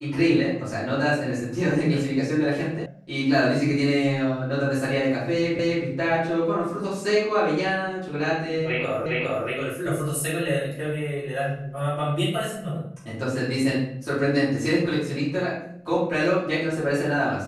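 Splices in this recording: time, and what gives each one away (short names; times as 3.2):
2.86 sound cut off
5.59 repeat of the last 0.26 s
9.06 repeat of the last 0.41 s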